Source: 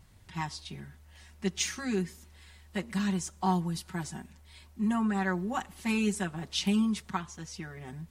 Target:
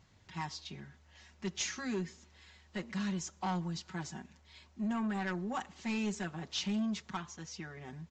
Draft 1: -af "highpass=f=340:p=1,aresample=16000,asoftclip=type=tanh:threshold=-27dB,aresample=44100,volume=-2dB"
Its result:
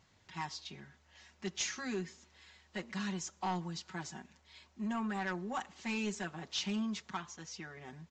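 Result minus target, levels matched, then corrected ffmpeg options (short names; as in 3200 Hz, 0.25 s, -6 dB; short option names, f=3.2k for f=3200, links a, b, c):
125 Hz band -2.5 dB
-af "highpass=f=140:p=1,aresample=16000,asoftclip=type=tanh:threshold=-27dB,aresample=44100,volume=-2dB"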